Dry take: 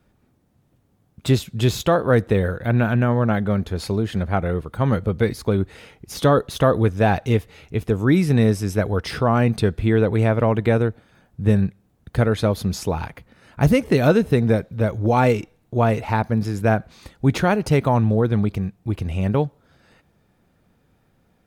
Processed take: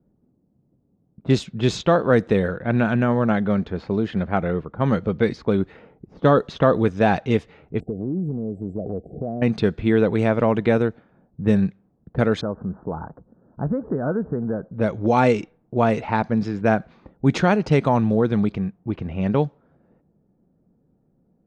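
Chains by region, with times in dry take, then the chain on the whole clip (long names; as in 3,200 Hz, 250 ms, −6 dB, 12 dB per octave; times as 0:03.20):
0:07.80–0:09.42: linear-phase brick-wall band-stop 790–7,300 Hz + downward compressor 10 to 1, threshold −22 dBFS
0:12.41–0:14.73: downward compressor 2 to 1, threshold −26 dBFS + Butterworth low-pass 1,600 Hz 72 dB per octave
whole clip: low-pass filter 7,500 Hz 24 dB per octave; low-pass that shuts in the quiet parts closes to 460 Hz, open at −14 dBFS; low shelf with overshoot 130 Hz −6 dB, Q 1.5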